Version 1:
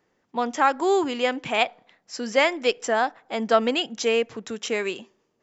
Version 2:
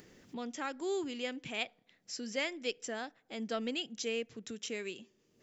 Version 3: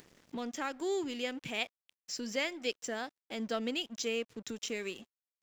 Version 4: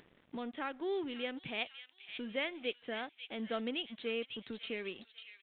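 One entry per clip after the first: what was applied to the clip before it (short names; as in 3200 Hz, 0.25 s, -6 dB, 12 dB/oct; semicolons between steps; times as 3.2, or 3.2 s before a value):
upward compressor, threshold -26 dBFS; bell 930 Hz -14 dB 1.7 oct; gain -9 dB
in parallel at -1 dB: compressor, threshold -44 dBFS, peak gain reduction 13.5 dB; on the sum: crossover distortion -53.5 dBFS
thin delay 0.547 s, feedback 41%, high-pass 2800 Hz, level -4.5 dB; downsampling 8000 Hz; gain -2.5 dB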